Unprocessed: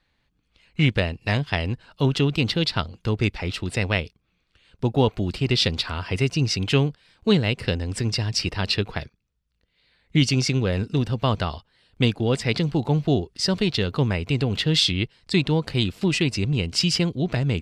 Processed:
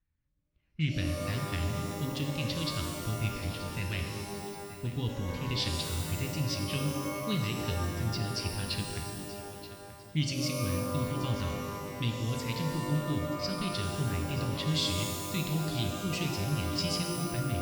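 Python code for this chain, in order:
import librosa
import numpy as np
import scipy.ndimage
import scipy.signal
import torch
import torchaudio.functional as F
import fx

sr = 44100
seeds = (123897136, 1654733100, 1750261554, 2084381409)

p1 = fx.env_lowpass(x, sr, base_hz=1300.0, full_db=-17.0)
p2 = fx.tone_stack(p1, sr, knobs='6-0-2')
p3 = p2 + fx.echo_feedback(p2, sr, ms=929, feedback_pct=40, wet_db=-15.5, dry=0)
p4 = fx.rev_shimmer(p3, sr, seeds[0], rt60_s=1.9, semitones=12, shimmer_db=-2, drr_db=3.5)
y = p4 * 10.0 ** (4.0 / 20.0)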